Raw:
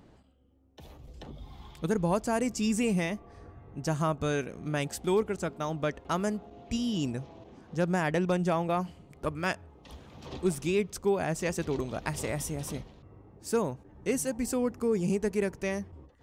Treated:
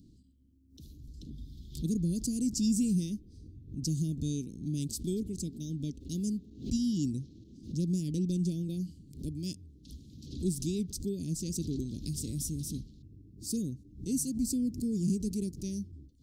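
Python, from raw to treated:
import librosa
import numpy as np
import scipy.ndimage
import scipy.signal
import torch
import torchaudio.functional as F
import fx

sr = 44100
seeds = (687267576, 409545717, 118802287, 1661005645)

y = scipy.signal.sosfilt(scipy.signal.ellip(3, 1.0, 60, [290.0, 4300.0], 'bandstop', fs=sr, output='sos'), x)
y = fx.pre_swell(y, sr, db_per_s=130.0)
y = y * librosa.db_to_amplitude(1.0)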